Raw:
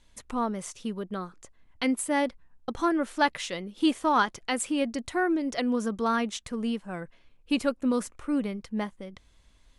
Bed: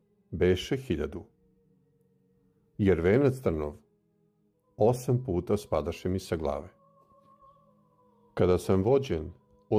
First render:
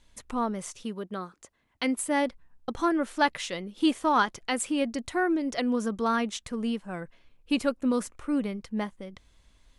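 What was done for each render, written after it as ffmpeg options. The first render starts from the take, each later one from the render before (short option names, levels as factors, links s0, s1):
-filter_complex "[0:a]asettb=1/sr,asplit=3[s0][s1][s2];[s0]atrim=end=0.834[s3];[s1]atrim=start=0.83:end=1.97,asetpts=PTS-STARTPTS,afade=t=in:d=0.004:c=qsin,afade=t=out:st=1.136:d=0.004:c=qsin,highpass=f=180:p=1[s4];[s2]atrim=start=1.966[s5];[s3][s4]acrossfade=d=0.004:c1=hsin:c2=qsin[s6];[s6][s5]acrossfade=d=0.004:c1=qsin:c2=hsin"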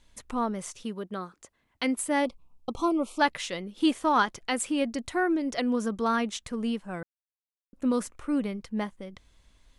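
-filter_complex "[0:a]asettb=1/sr,asplit=3[s0][s1][s2];[s0]atrim=end=2.254[s3];[s1]atrim=start=2.25:end=3.2,asetpts=PTS-STARTPTS,afade=t=in:d=0.004:c=qsin,afade=t=out:st=0.946:d=0.004:c=qsin,asuperstop=centerf=1700:order=8:qfactor=1.7[s4];[s2]atrim=start=3.196[s5];[s3][s4]acrossfade=d=0.004:c1=hsin:c2=qsin[s6];[s6][s5]acrossfade=d=0.004:c1=qsin:c2=hsin,asplit=3[s7][s8][s9];[s7]atrim=end=7.03,asetpts=PTS-STARTPTS,afade=t=out:st=7.026:d=0.004:c=hsin[s10];[s8]atrim=start=7.03:end=7.73,asetpts=PTS-STARTPTS,volume=0[s11];[s9]atrim=start=7.73,asetpts=PTS-STARTPTS,afade=t=in:d=0.004:c=hsin[s12];[s10][s11][s12]concat=n=3:v=0:a=1"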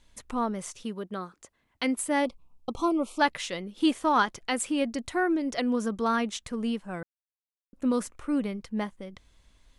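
-af anull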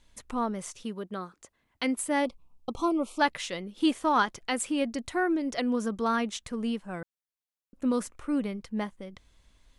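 -af "volume=0.891"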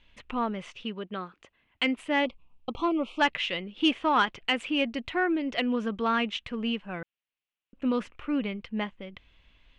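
-af "lowpass=f=2800:t=q:w=3.6,asoftclip=type=tanh:threshold=0.266"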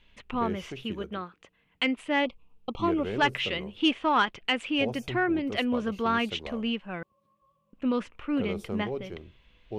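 -filter_complex "[1:a]volume=0.299[s0];[0:a][s0]amix=inputs=2:normalize=0"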